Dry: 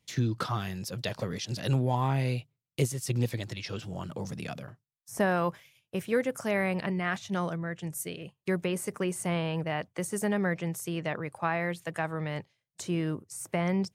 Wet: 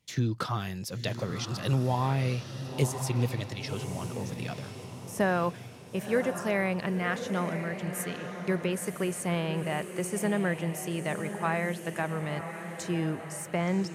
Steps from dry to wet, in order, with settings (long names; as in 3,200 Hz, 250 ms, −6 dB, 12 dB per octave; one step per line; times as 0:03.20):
feedback delay with all-pass diffusion 1,026 ms, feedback 46%, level −8.5 dB